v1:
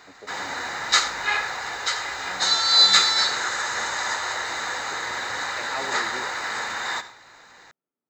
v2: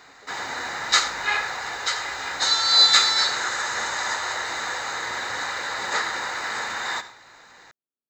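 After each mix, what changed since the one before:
speech -11.5 dB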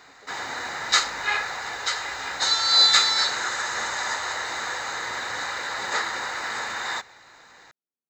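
reverb: off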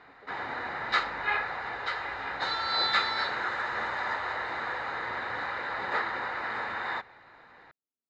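master: add air absorption 430 m

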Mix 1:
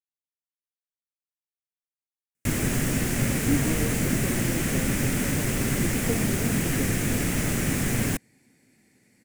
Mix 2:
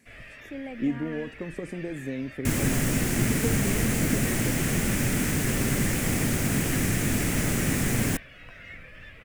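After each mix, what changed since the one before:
speech: entry -2.65 s; first sound: unmuted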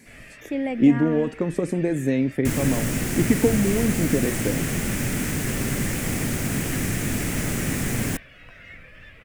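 speech +11.0 dB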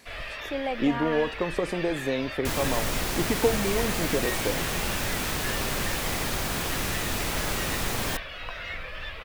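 first sound +10.5 dB; master: add graphic EQ 125/250/1000/2000/4000/8000 Hz -9/-9/+8/-7/+9/-6 dB

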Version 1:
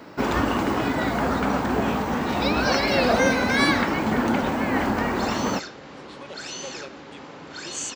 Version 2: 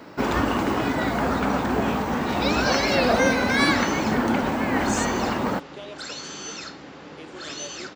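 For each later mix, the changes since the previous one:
speech: entry -2.85 s; second sound: entry -2.70 s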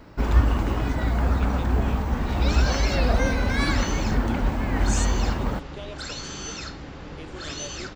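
first sound -6.5 dB; master: remove HPF 210 Hz 12 dB/oct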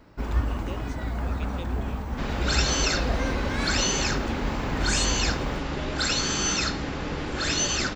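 first sound -6.5 dB; second sound +7.5 dB; reverb: on, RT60 0.65 s

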